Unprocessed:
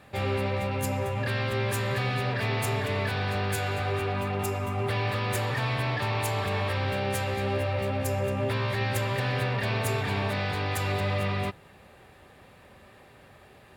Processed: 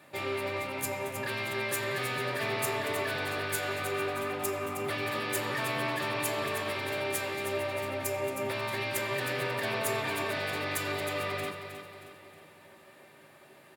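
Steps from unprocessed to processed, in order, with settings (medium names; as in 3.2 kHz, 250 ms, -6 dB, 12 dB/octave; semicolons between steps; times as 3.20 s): high-pass 200 Hz 12 dB/octave; treble shelf 6.9 kHz +8.5 dB; feedback delay 314 ms, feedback 46%, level -9 dB; on a send at -3.5 dB: reverberation RT60 0.20 s, pre-delay 3 ms; on the sum: trim -4 dB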